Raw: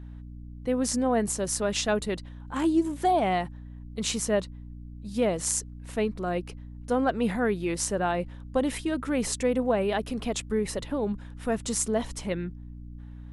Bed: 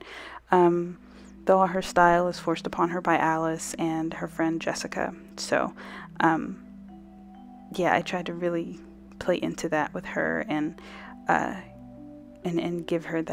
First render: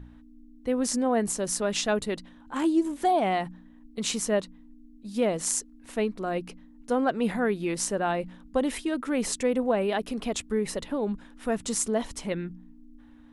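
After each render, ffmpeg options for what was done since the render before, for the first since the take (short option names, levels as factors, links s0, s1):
-af "bandreject=f=60:t=h:w=4,bandreject=f=120:t=h:w=4,bandreject=f=180:t=h:w=4"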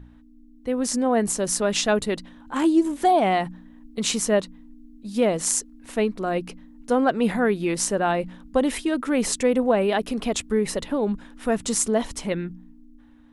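-af "dynaudnorm=f=170:g=11:m=1.78"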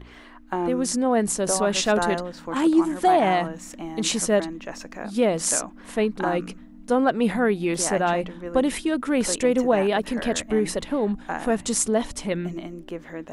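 -filter_complex "[1:a]volume=0.447[s0];[0:a][s0]amix=inputs=2:normalize=0"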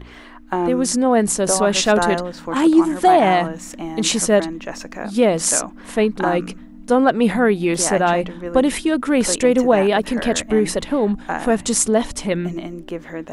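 -af "volume=1.88,alimiter=limit=0.891:level=0:latency=1"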